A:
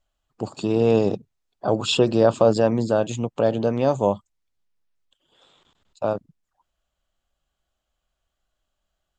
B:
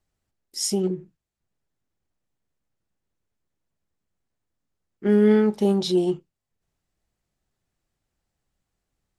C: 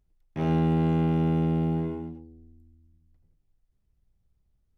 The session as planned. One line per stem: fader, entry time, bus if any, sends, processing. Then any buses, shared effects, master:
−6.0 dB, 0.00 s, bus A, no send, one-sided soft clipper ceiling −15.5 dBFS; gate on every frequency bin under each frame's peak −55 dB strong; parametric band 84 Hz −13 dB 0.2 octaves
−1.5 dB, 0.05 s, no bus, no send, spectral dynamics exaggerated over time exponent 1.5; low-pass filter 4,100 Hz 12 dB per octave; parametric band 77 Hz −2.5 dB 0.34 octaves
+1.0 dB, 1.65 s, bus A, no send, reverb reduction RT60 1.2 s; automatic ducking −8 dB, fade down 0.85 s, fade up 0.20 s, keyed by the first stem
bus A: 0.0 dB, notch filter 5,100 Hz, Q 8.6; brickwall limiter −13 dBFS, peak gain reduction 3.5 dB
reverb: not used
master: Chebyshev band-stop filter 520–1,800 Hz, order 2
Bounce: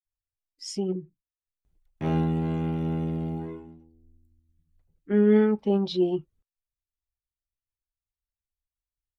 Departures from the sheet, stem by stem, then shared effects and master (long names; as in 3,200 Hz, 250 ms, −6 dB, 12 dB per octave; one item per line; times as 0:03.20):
stem A: muted
master: missing Chebyshev band-stop filter 520–1,800 Hz, order 2